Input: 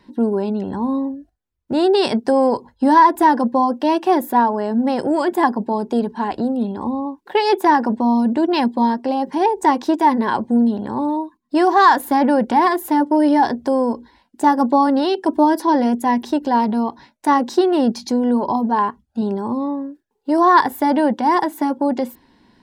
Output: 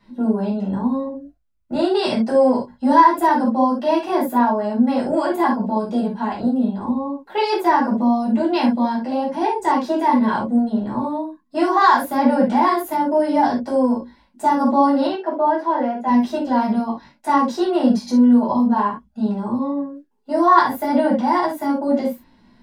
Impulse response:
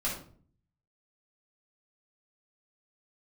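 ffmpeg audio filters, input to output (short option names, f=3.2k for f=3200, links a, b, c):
-filter_complex "[0:a]asettb=1/sr,asplit=3[a][b][c];[a]atrim=end=15.074[d];[b]atrim=start=15.07:end=16.08,asetpts=PTS-STARTPTS,afade=t=in:d=0.004:c=qsin,afade=t=out:st=1.006:d=0.004:c=qsin,highpass=390,lowpass=2.3k[e];[c]atrim=start=16.076[f];[d][e]acrossfade=d=0.004:c1=hsin:c2=qsin[g];[g][f]acrossfade=d=0.004:c1=qsin:c2=hsin[h];[1:a]atrim=start_sample=2205,atrim=end_sample=3969[i];[h][i]afir=irnorm=-1:irlink=0,volume=-6.5dB"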